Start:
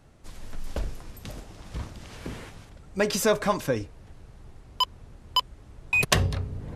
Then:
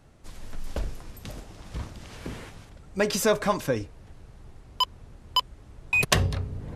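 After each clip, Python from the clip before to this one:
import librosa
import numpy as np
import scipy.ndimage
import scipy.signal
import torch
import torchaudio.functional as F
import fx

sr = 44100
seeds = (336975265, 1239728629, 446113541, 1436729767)

y = x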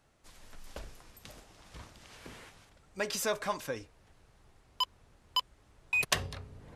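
y = fx.low_shelf(x, sr, hz=450.0, db=-10.5)
y = y * librosa.db_to_amplitude(-6.0)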